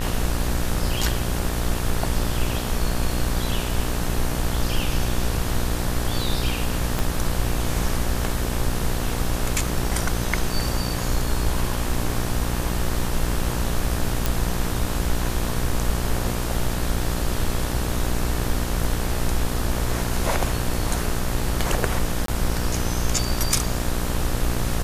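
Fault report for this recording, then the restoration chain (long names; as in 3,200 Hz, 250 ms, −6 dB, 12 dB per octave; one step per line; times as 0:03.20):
mains buzz 60 Hz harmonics 31 −27 dBFS
0:06.99: click
0:14.26: click
0:22.26–0:22.28: drop-out 23 ms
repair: click removal
hum removal 60 Hz, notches 31
repair the gap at 0:22.26, 23 ms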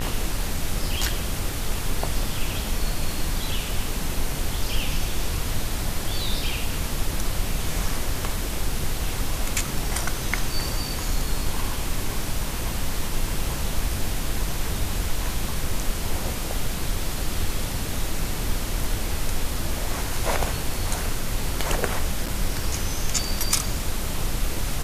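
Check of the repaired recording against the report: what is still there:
0:06.99: click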